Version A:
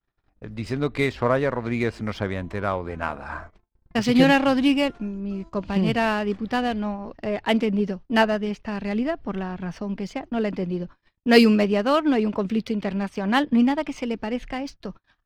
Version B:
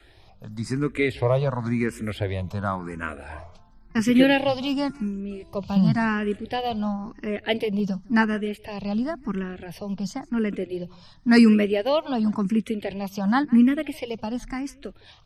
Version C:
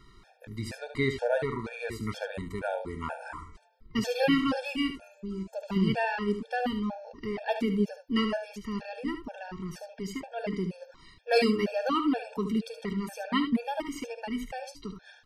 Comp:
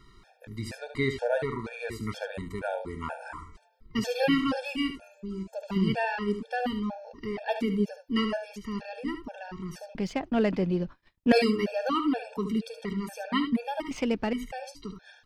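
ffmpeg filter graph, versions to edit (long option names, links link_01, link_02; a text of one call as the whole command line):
ffmpeg -i take0.wav -i take1.wav -i take2.wav -filter_complex "[0:a]asplit=2[link_01][link_02];[2:a]asplit=3[link_03][link_04][link_05];[link_03]atrim=end=9.952[link_06];[link_01]atrim=start=9.948:end=11.322[link_07];[link_04]atrim=start=11.318:end=13.912[link_08];[link_02]atrim=start=13.908:end=14.332[link_09];[link_05]atrim=start=14.328[link_10];[link_06][link_07]acrossfade=duration=0.004:curve1=hsin:curve2=hsin[link_11];[link_11][link_08]acrossfade=duration=0.004:curve1=hsin:curve2=hsin[link_12];[link_12][link_09]acrossfade=duration=0.004:curve1=hsin:curve2=hsin[link_13];[link_13][link_10]acrossfade=duration=0.004:curve1=hsin:curve2=hsin" out.wav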